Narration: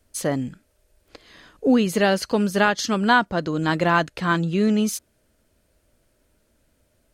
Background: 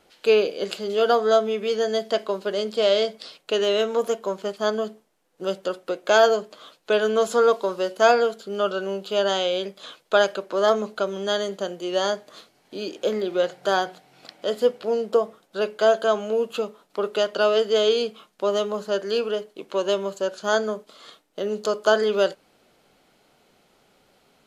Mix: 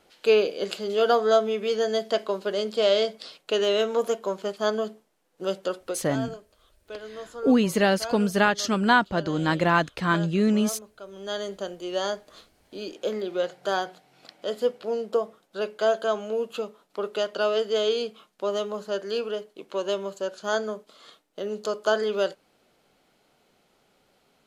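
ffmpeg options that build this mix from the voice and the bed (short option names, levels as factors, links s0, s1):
-filter_complex "[0:a]adelay=5800,volume=0.794[s0];[1:a]volume=4.22,afade=t=out:st=5.82:d=0.3:silence=0.141254,afade=t=in:st=11.02:d=0.47:silence=0.199526[s1];[s0][s1]amix=inputs=2:normalize=0"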